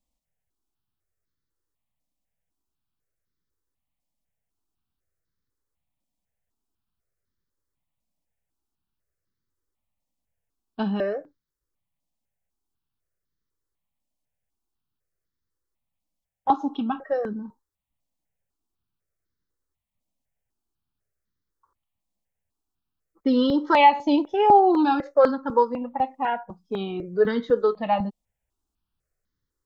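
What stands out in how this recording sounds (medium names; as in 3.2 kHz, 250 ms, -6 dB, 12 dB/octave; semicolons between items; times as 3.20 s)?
notches that jump at a steady rate 4 Hz 410–2600 Hz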